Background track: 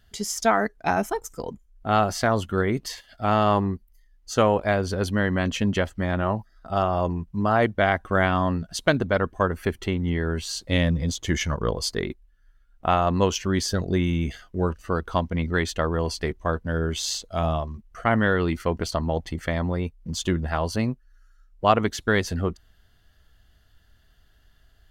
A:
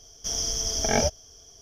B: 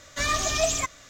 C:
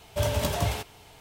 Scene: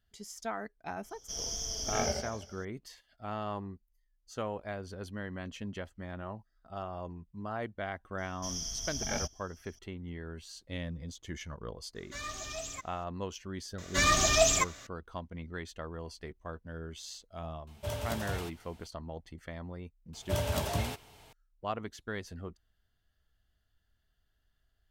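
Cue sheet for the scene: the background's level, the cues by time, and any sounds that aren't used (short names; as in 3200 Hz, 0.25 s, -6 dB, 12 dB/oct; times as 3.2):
background track -17 dB
1.04 add A -10 dB + warbling echo 83 ms, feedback 54%, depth 99 cents, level -5.5 dB
8.18 add A -10 dB + bell 470 Hz -14 dB 0.8 oct
11.95 add B -15 dB + notch 670 Hz, Q 17
13.78 add B
17.67 add C -10 dB
20.13 add C -5.5 dB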